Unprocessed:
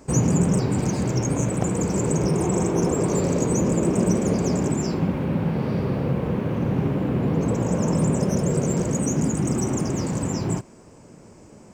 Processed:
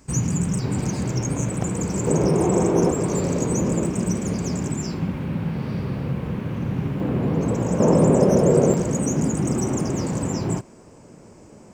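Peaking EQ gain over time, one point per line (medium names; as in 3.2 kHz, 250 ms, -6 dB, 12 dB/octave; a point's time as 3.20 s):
peaking EQ 520 Hz 2.1 oct
-11 dB
from 0.64 s -4 dB
from 2.07 s +5 dB
from 2.91 s -1.5 dB
from 3.86 s -7.5 dB
from 7.00 s +0.5 dB
from 7.80 s +10.5 dB
from 8.74 s +1.5 dB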